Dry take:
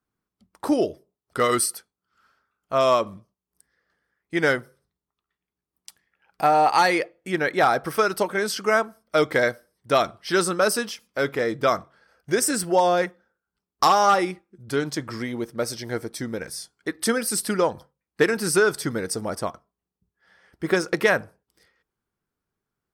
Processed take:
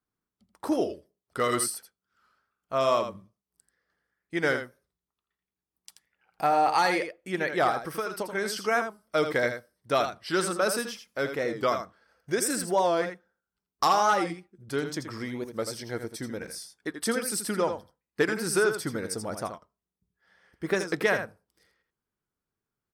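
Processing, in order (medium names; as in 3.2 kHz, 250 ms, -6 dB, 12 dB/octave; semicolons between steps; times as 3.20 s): 7.70–8.33 s: compression 3:1, threshold -24 dBFS, peak gain reduction 7.5 dB; on a send: delay 82 ms -8.5 dB; on the sum: warped record 45 rpm, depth 100 cents; trim -5.5 dB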